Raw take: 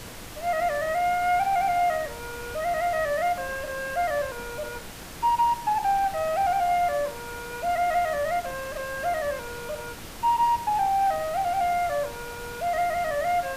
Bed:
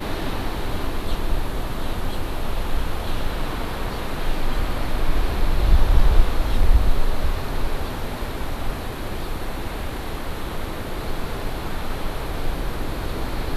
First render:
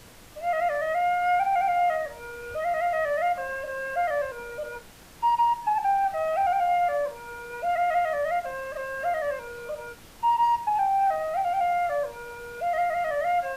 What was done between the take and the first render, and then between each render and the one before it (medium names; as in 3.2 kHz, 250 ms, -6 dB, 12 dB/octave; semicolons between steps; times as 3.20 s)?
noise print and reduce 9 dB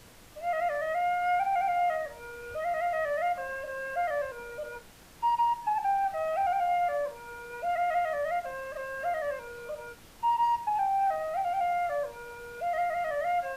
trim -4 dB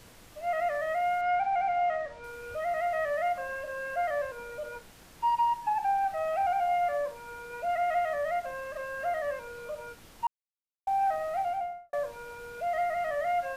1.21–2.24 s: distance through air 92 m; 10.27–10.87 s: mute; 11.40–11.93 s: studio fade out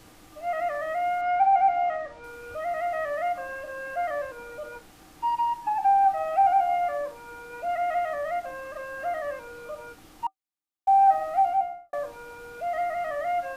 small resonant body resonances 310/770/1200 Hz, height 12 dB, ringing for 85 ms